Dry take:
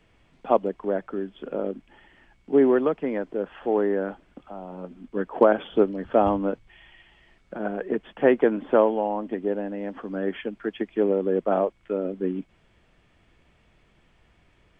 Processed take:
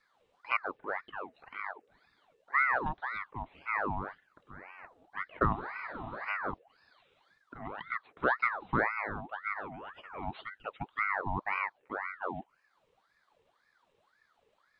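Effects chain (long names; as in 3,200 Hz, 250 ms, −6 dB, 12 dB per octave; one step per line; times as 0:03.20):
phaser swept by the level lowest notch 190 Hz, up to 1,600 Hz, full sweep at −22 dBFS
frozen spectrum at 0:05.58, 0.71 s
ring modulator whose carrier an LFO sweeps 1,100 Hz, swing 60%, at 1.9 Hz
level −6.5 dB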